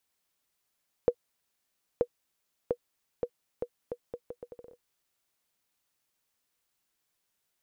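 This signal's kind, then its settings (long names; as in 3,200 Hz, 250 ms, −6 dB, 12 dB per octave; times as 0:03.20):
bouncing ball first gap 0.93 s, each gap 0.75, 484 Hz, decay 66 ms −12 dBFS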